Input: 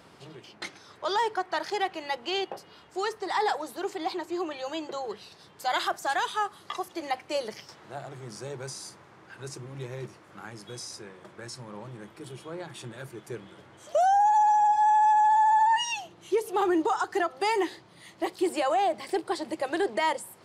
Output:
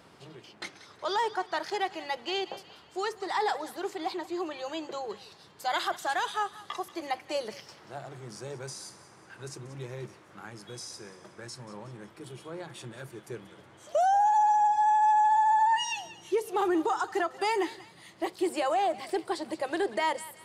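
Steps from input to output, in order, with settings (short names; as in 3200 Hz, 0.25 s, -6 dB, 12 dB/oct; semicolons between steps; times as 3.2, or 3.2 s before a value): thinning echo 0.184 s, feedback 48%, high-pass 1200 Hz, level -14.5 dB; gain -2 dB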